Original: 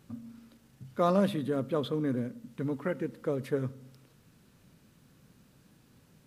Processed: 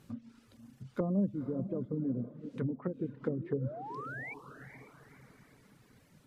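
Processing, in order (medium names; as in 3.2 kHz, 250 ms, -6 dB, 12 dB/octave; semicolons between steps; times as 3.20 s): low-pass that closes with the level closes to 310 Hz, closed at -28 dBFS; painted sound rise, 3.25–4.34 s, 220–2400 Hz -43 dBFS; echo that smears into a reverb 486 ms, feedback 45%, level -10 dB; reverb removal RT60 0.83 s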